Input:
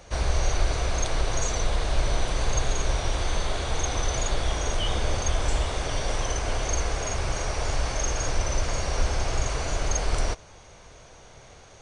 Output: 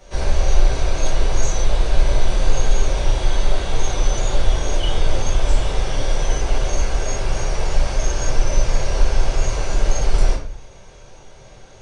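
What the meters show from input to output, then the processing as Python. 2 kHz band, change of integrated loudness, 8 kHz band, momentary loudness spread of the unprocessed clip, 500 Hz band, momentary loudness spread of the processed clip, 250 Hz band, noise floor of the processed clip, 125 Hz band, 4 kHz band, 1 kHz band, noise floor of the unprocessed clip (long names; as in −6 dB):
+2.0 dB, +5.5 dB, +1.5 dB, 2 LU, +5.0 dB, 3 LU, +5.0 dB, −42 dBFS, +5.5 dB, +2.5 dB, +2.5 dB, −49 dBFS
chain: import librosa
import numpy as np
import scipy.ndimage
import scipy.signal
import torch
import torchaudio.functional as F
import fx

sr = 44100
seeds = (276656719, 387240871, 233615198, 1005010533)

y = fx.room_shoebox(x, sr, seeds[0], volume_m3=40.0, walls='mixed', distance_m=1.2)
y = F.gain(torch.from_numpy(y), -4.5).numpy()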